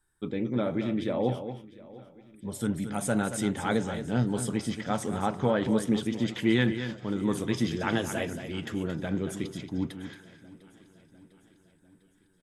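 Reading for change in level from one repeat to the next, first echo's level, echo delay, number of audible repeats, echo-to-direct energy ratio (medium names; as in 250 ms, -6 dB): no regular repeats, -10.0 dB, 226 ms, 6, -9.5 dB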